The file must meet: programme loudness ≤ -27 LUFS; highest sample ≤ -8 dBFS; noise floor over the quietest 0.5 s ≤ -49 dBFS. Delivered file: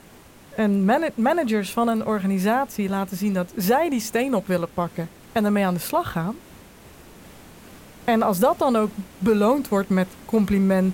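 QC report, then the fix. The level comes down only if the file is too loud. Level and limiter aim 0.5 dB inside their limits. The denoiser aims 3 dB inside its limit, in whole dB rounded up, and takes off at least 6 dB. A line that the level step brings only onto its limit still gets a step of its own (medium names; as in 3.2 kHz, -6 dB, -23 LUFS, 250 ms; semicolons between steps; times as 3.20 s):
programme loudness -22.5 LUFS: fail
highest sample -8.5 dBFS: pass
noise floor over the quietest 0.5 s -48 dBFS: fail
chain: trim -5 dB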